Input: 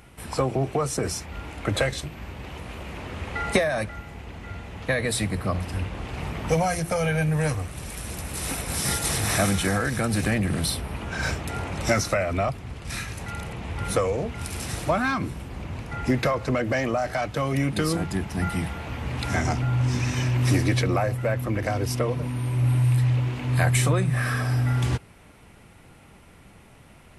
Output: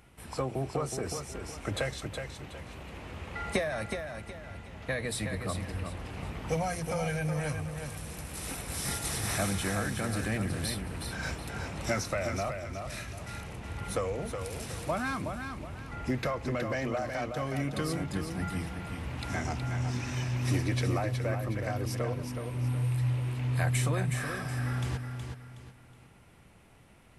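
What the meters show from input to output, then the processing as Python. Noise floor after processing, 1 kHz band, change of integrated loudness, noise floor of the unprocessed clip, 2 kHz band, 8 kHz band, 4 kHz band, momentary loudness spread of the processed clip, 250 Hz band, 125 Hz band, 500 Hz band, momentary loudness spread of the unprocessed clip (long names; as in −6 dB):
−56 dBFS, −7.5 dB, −8.0 dB, −50 dBFS, −7.5 dB, −7.5 dB, −7.5 dB, 11 LU, −7.5 dB, −7.5 dB, −7.5 dB, 12 LU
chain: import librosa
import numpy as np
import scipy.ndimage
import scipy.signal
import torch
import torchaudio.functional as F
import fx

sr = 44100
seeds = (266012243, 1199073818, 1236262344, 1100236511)

y = fx.echo_feedback(x, sr, ms=369, feedback_pct=33, wet_db=-6.5)
y = F.gain(torch.from_numpy(y), -8.5).numpy()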